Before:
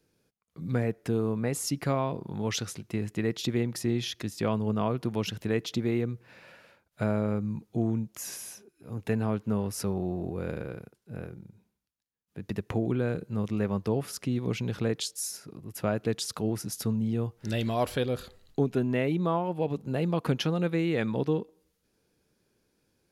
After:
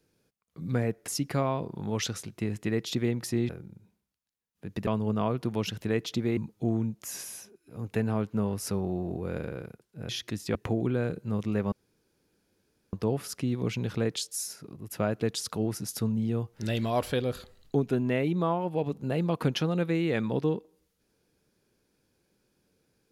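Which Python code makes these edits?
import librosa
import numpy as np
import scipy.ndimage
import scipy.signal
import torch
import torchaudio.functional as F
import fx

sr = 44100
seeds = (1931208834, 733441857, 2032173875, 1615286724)

y = fx.edit(x, sr, fx.cut(start_s=1.08, length_s=0.52),
    fx.swap(start_s=4.01, length_s=0.46, other_s=11.22, other_length_s=1.38),
    fx.cut(start_s=5.97, length_s=1.53),
    fx.insert_room_tone(at_s=13.77, length_s=1.21), tone=tone)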